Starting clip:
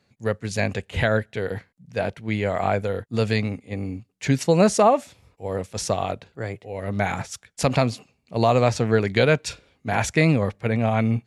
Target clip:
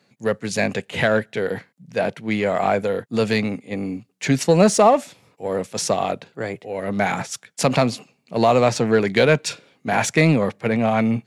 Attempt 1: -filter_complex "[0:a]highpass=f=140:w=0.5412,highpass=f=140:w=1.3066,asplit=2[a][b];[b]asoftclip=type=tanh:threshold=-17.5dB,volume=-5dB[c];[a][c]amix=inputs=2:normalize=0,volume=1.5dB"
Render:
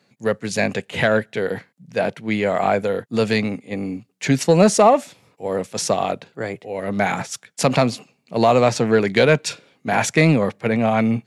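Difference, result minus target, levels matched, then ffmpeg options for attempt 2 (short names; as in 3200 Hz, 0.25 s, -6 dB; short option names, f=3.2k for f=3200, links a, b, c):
soft clip: distortion -4 dB
-filter_complex "[0:a]highpass=f=140:w=0.5412,highpass=f=140:w=1.3066,asplit=2[a][b];[b]asoftclip=type=tanh:threshold=-24dB,volume=-5dB[c];[a][c]amix=inputs=2:normalize=0,volume=1.5dB"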